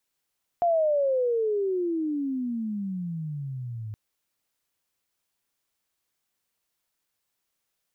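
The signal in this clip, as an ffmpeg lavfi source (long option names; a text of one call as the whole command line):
ffmpeg -f lavfi -i "aevalsrc='pow(10,(-19-13.5*t/3.32)/20)*sin(2*PI*705*3.32/(-33*log(2)/12)*(exp(-33*log(2)/12*t/3.32)-1))':duration=3.32:sample_rate=44100" out.wav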